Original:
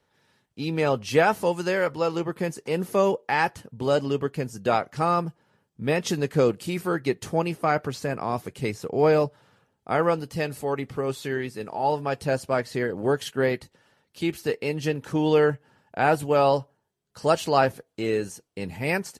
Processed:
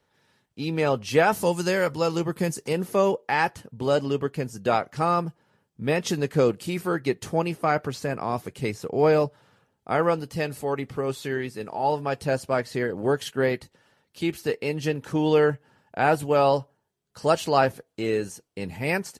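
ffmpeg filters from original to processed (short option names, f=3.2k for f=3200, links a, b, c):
-filter_complex "[0:a]asettb=1/sr,asplit=3[a][b][c];[a]atrim=end=1.324[d];[b]atrim=start=1.32:end=2.73,asetpts=PTS-STARTPTS,afade=t=in:d=0.004:c=qsin,afade=t=out:st=1.406:d=0.004:c=qsin,bass=f=250:g=5,treble=f=4k:g=8[e];[c]atrim=start=2.726[f];[d][e]acrossfade=d=0.004:c1=hsin:c2=qsin[g];[g][f]acrossfade=d=0.004:c1=qsin:c2=hsin"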